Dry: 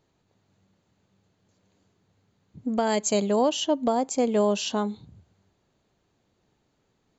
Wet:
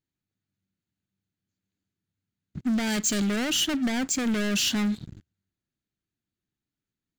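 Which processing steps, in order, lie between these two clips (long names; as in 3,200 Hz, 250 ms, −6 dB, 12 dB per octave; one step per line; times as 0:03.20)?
leveller curve on the samples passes 5
flat-topped bell 680 Hz −11.5 dB
level −8 dB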